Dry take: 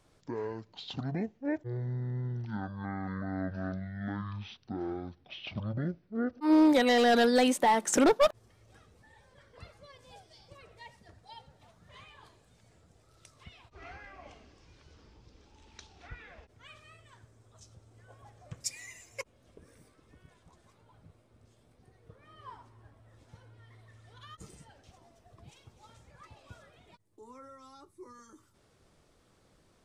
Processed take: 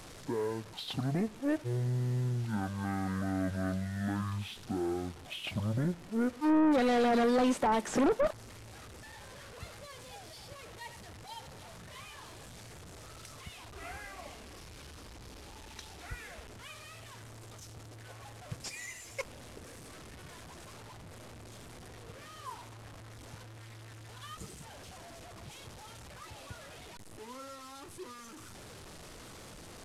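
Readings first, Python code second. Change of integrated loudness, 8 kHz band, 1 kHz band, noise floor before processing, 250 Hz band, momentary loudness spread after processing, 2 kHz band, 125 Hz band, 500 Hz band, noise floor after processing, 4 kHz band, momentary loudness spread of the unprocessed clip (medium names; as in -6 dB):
-3.5 dB, -5.0 dB, -3.0 dB, -66 dBFS, -1.5 dB, 21 LU, -3.5 dB, +3.0 dB, -3.0 dB, -50 dBFS, -4.0 dB, 21 LU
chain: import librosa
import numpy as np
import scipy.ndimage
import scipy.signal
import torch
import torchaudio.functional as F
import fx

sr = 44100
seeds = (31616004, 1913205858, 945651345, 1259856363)

y = fx.delta_mod(x, sr, bps=64000, step_db=-47.0)
y = 10.0 ** (-26.5 / 20.0) * np.tanh(y / 10.0 ** (-26.5 / 20.0))
y = F.gain(torch.from_numpy(y), 3.5).numpy()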